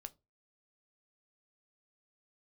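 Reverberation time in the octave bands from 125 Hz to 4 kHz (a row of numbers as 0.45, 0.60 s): 0.35, 0.30, 0.30, 0.20, 0.15, 0.15 s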